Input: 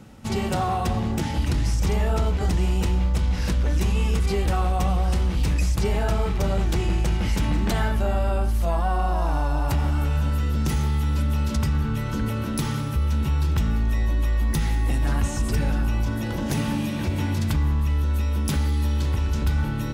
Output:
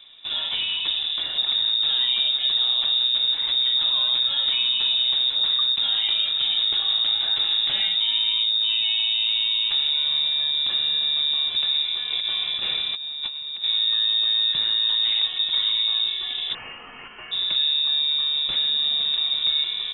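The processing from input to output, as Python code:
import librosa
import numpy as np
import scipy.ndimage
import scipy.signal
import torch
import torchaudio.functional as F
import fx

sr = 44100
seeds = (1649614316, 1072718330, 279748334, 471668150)

y = fx.over_compress(x, sr, threshold_db=-25.0, ratio=-0.5, at=(12.1, 13.64))
y = fx.steep_highpass(y, sr, hz=720.0, slope=36, at=(16.53, 17.31), fade=0.02)
y = fx.freq_invert(y, sr, carrier_hz=3700)
y = F.gain(torch.from_numpy(y), -2.5).numpy()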